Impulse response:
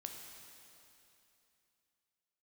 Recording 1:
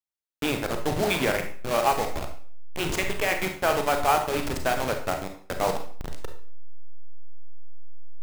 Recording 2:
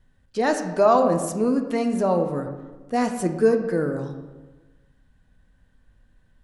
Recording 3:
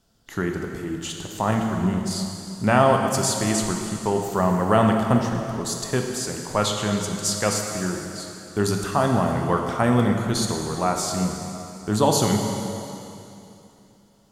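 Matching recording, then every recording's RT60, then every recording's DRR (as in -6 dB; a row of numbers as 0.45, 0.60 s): 3; 0.50, 1.2, 2.9 s; 4.5, 5.5, 2.0 dB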